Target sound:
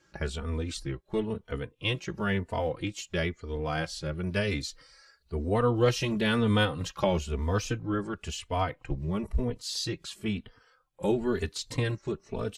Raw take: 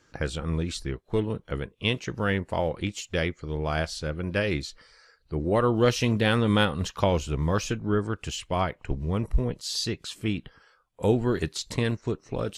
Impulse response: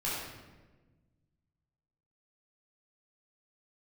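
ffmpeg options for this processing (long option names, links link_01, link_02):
-filter_complex "[0:a]asettb=1/sr,asplit=3[link_01][link_02][link_03];[link_01]atrim=end=4.134[link_04];[link_02]atrim=start=4.13:end=5.54,asetpts=PTS-STARTPTS,afade=type=in:duration=0.004:curve=qsin,afade=type=out:start_time=1.406:duration=0.004:curve=qsin,bass=frequency=250:gain=1,treble=frequency=4000:gain=6[link_05];[link_03]atrim=start=5.536[link_06];[link_04][link_05]acrossfade=duration=0.004:curve1=hsin:curve2=qsin[link_07];[link_07][link_06]acrossfade=duration=0.004:curve1=qsin:curve2=hsin,asplit=2[link_08][link_09];[link_09]adelay=3.2,afreqshift=1[link_10];[link_08][link_10]amix=inputs=2:normalize=1"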